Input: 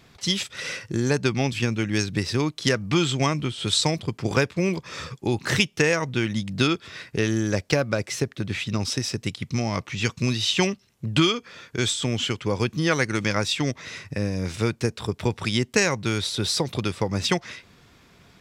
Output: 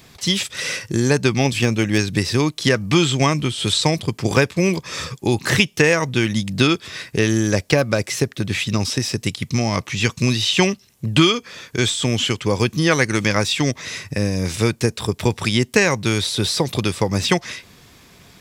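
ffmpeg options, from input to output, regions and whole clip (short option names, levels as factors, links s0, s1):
-filter_complex "[0:a]asettb=1/sr,asplit=3[s0][s1][s2];[s0]atrim=end=1.454[s3];[s1]atrim=start=1.45:end=1.98,asetpts=PTS-STARTPTS,afade=t=in:d=0.004:c=qsin,afade=t=out:st=0.526:d=0.004:c=qsin,asoftclip=type=hard:threshold=0.224,equalizer=f=590:w=1.3:g=4[s4];[s2]atrim=start=1.976[s5];[s3][s4]acrossfade=d=0.004:c1=hsin:c2=qsin[s6];[s6][s5]acrossfade=d=0.004:c1=qsin:c2=hsin,highshelf=f=6400:g=11,bandreject=f=1400:w=16,acrossover=split=3400[s7][s8];[s8]acompressor=threshold=0.0355:ratio=4:attack=1:release=60[s9];[s7][s9]amix=inputs=2:normalize=0,volume=1.88"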